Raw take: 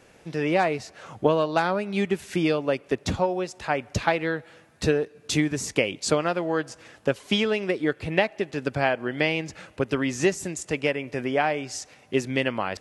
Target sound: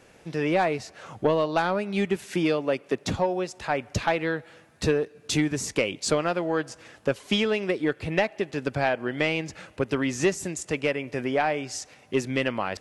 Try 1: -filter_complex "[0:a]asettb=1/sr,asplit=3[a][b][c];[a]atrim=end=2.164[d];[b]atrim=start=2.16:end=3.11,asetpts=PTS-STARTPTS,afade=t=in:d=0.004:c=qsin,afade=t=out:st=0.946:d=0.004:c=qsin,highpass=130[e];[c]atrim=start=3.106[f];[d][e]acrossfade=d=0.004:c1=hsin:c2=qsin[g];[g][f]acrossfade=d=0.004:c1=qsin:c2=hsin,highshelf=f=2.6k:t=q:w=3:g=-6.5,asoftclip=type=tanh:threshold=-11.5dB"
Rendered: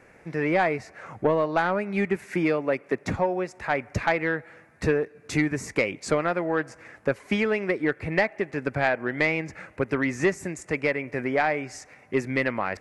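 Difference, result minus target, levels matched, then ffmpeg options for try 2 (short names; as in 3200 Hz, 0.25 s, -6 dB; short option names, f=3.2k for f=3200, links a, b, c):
4000 Hz band -8.5 dB
-filter_complex "[0:a]asettb=1/sr,asplit=3[a][b][c];[a]atrim=end=2.164[d];[b]atrim=start=2.16:end=3.11,asetpts=PTS-STARTPTS,afade=t=in:d=0.004:c=qsin,afade=t=out:st=0.946:d=0.004:c=qsin,highpass=130[e];[c]atrim=start=3.106[f];[d][e]acrossfade=d=0.004:c1=hsin:c2=qsin[g];[g][f]acrossfade=d=0.004:c1=qsin:c2=hsin,asoftclip=type=tanh:threshold=-11.5dB"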